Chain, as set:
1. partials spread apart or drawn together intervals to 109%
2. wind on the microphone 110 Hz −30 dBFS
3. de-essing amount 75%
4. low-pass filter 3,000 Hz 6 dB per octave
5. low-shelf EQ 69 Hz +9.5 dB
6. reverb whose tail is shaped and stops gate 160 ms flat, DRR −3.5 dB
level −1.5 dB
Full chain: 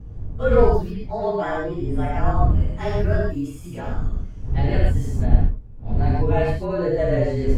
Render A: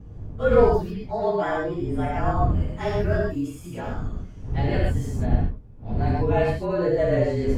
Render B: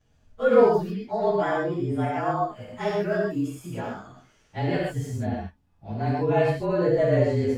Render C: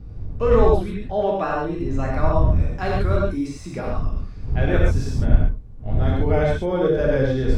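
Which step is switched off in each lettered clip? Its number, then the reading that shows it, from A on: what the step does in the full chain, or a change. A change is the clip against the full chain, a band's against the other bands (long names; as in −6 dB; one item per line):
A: 5, 125 Hz band −3.0 dB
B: 2, 125 Hz band −7.0 dB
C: 1, 4 kHz band +1.5 dB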